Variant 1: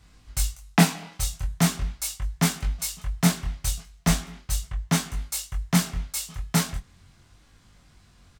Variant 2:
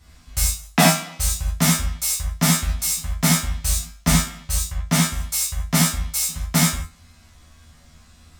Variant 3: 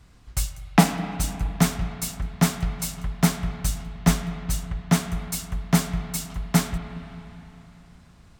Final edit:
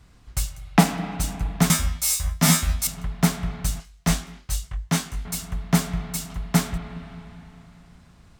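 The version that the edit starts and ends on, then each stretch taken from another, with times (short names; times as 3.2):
3
1.7–2.87 from 2
3.8–5.25 from 1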